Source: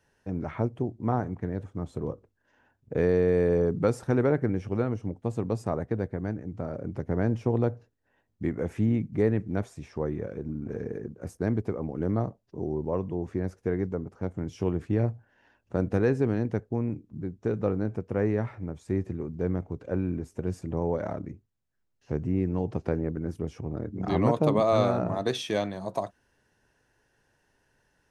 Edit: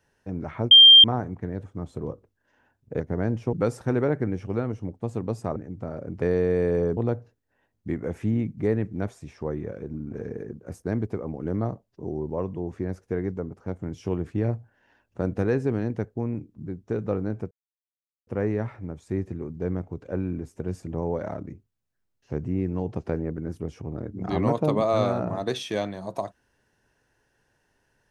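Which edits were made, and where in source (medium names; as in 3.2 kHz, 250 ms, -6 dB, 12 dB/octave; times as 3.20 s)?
0.71–1.04 s: bleep 3.18 kHz -7 dBFS
3.00–3.75 s: swap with 6.99–7.52 s
5.78–6.33 s: delete
18.06 s: insert silence 0.76 s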